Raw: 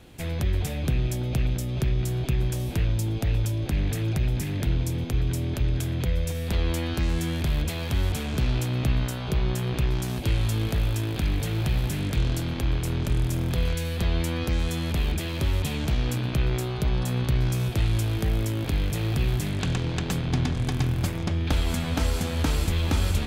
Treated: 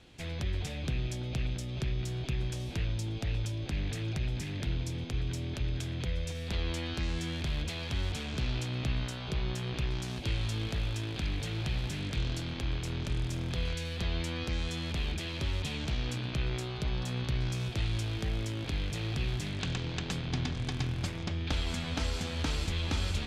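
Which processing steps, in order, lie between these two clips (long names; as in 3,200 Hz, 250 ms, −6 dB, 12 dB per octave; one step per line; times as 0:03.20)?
low-pass filter 4,800 Hz 12 dB per octave
high-shelf EQ 2,800 Hz +11.5 dB
level −8.5 dB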